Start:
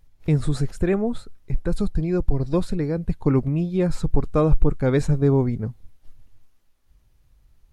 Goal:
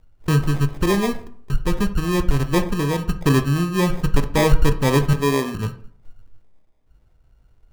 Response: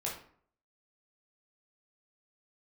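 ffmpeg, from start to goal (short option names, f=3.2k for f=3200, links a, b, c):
-filter_complex "[0:a]asettb=1/sr,asplit=3[a][b][c];[a]atrim=end=5.134[d];[b]atrim=start=5.13:end=5.55,asetpts=PTS-STARTPTS,afade=t=in:d=0.004:c=qsin,afade=t=out:st=0.416:d=0.004:c=qsin,highpass=280[e];[c]atrim=start=5.546[f];[d][e]acrossfade=d=0.004:c1=hsin:c2=qsin[g];[g][f]acrossfade=d=0.004:c1=qsin:c2=hsin,acrusher=samples=31:mix=1:aa=0.000001,asplit=2[h][i];[1:a]atrim=start_sample=2205,highshelf=f=5.1k:g=-10[j];[i][j]afir=irnorm=-1:irlink=0,volume=-6dB[k];[h][k]amix=inputs=2:normalize=0,volume=-1dB"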